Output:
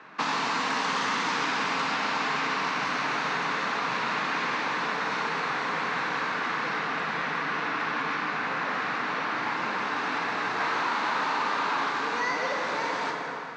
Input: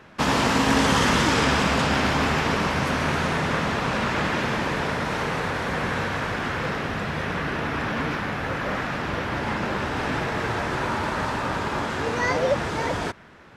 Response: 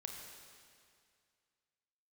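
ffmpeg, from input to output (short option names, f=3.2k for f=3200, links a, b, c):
-filter_complex "[0:a]asettb=1/sr,asplit=3[a][b][c];[a]atrim=end=10.604[d];[b]atrim=start=10.6:end=11.9,asetpts=PTS-STARTPTS,afade=t=in:d=0.004:c=qsin,afade=t=out:st=1.296:d=0.004:c=qsin,asplit=2[e][f];[f]highpass=f=720:p=1,volume=26dB,asoftclip=type=tanh:threshold=-14dB[g];[e][g]amix=inputs=2:normalize=0,lowpass=f=1.5k:p=1,volume=-6dB[h];[c]atrim=start=11.896[i];[d][h]acrossfade=d=0.004:c1=hsin:c2=qsin[j];[j][i]acrossfade=d=0.004:c1=qsin:c2=hsin,highpass=f=210:w=0.5412,highpass=f=210:w=1.3066,equalizer=f=220:t=q:w=4:g=-8,equalizer=f=370:t=q:w=4:g=-8,equalizer=f=570:t=q:w=4:g=-9,equalizer=f=1.1k:t=q:w=4:g=4,equalizer=f=3.2k:t=q:w=4:g=-6,equalizer=f=5.2k:t=q:w=4:g=-5,lowpass=f=5.6k:w=0.5412,lowpass=f=5.6k:w=1.3066[k];[1:a]atrim=start_sample=2205[l];[k][l]afir=irnorm=-1:irlink=0,acrossover=split=440|2800[m][n][o];[m]acompressor=threshold=-46dB:ratio=4[p];[n]acompressor=threshold=-35dB:ratio=4[q];[o]acompressor=threshold=-41dB:ratio=4[r];[p][q][r]amix=inputs=3:normalize=0,volume=6.5dB"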